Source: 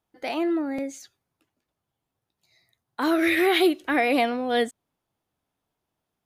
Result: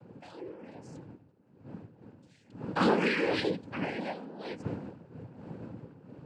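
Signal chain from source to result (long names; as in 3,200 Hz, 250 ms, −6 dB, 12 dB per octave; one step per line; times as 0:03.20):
source passing by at 0:02.62, 30 m/s, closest 5.3 metres
wind on the microphone 240 Hz −45 dBFS
cochlear-implant simulation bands 8
level +2.5 dB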